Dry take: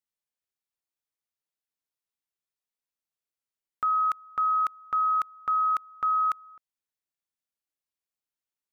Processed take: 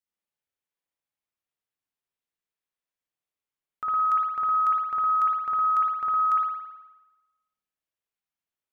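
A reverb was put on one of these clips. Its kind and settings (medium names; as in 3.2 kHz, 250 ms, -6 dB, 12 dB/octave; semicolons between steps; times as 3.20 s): spring tank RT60 1.1 s, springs 54 ms, chirp 80 ms, DRR -5.5 dB; trim -4.5 dB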